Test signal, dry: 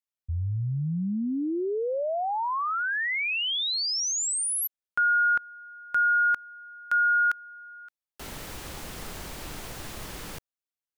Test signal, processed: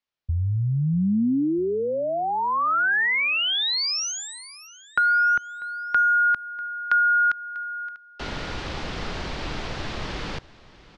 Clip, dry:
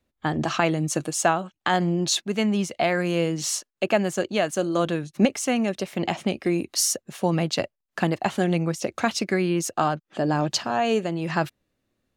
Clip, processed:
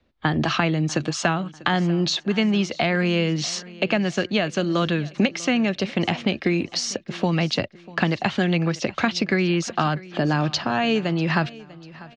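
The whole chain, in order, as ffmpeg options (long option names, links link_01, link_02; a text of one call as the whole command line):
ffmpeg -i in.wav -filter_complex "[0:a]lowpass=frequency=4900:width=0.5412,lowpass=frequency=4900:width=1.3066,acrossover=split=250|1400[link_01][link_02][link_03];[link_01]acompressor=threshold=-31dB:ratio=4[link_04];[link_02]acompressor=threshold=-35dB:ratio=4[link_05];[link_03]acompressor=threshold=-32dB:ratio=4[link_06];[link_04][link_05][link_06]amix=inputs=3:normalize=0,aecho=1:1:644|1288|1932:0.1|0.039|0.0152,volume=8.5dB" out.wav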